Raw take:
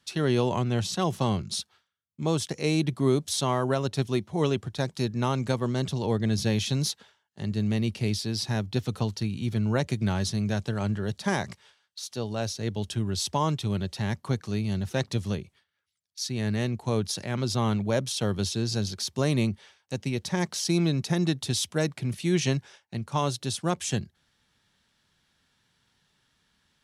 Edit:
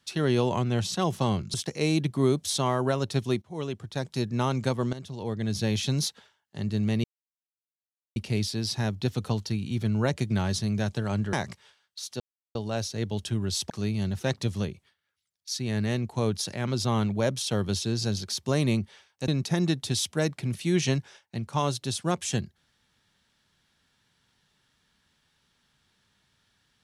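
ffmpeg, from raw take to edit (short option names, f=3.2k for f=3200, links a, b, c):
-filter_complex "[0:a]asplit=9[a][b][c][d][e][f][g][h][i];[a]atrim=end=1.542[j];[b]atrim=start=2.368:end=4.25,asetpts=PTS-STARTPTS,afade=t=out:st=1.878:d=0.004:c=hsin:silence=0.211349[k];[c]atrim=start=4.25:end=5.76,asetpts=PTS-STARTPTS,afade=t=in:d=0.87:silence=0.211349,afade=t=out:st=1.506:d=0.004:c=hsin:silence=0.199526[l];[d]atrim=start=5.76:end=7.87,asetpts=PTS-STARTPTS,afade=t=in:d=0.91:silence=0.199526,afade=t=out:st=2.106:d=0.004:c=hsin,apad=pad_dur=1.12[m];[e]atrim=start=7.87:end=11.042,asetpts=PTS-STARTPTS,afade=t=in:d=0.004:c=hsin[n];[f]atrim=start=11.328:end=12.2,asetpts=PTS-STARTPTS,afade=t=out:st=0.868:d=0.004:c=hsin,apad=pad_dur=0.35[o];[g]atrim=start=12.2:end=13.352,asetpts=PTS-STARTPTS,afade=t=in:d=0.004:c=hsin[p];[h]atrim=start=14.398:end=19.982[q];[i]atrim=start=20.868[r];[k][l][m][n]concat=n=4:v=0:a=1[s];[j][s]acrossfade=d=0.004:c1=hsin:c2=hsin[t];[o][p]concat=n=2:v=0:a=1[u];[t][u]acrossfade=d=0.004:c1=hsin:c2=hsin[v];[v][q]acrossfade=d=0.004:c1=hsin:c2=hsin[w];[w][r]acrossfade=d=0.004:c1=hsin:c2=hsin"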